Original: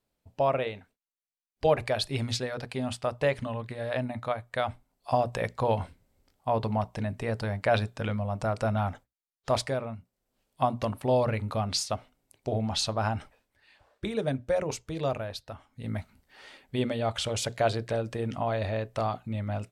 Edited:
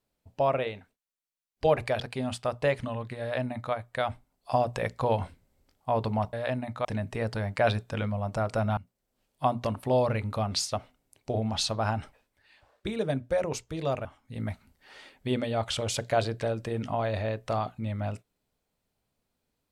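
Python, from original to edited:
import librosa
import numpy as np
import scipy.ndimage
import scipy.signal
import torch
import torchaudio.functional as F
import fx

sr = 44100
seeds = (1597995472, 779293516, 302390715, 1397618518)

y = fx.edit(x, sr, fx.cut(start_s=2.0, length_s=0.59),
    fx.duplicate(start_s=3.8, length_s=0.52, to_s=6.92),
    fx.cut(start_s=8.84, length_s=1.11),
    fx.cut(start_s=15.23, length_s=0.3), tone=tone)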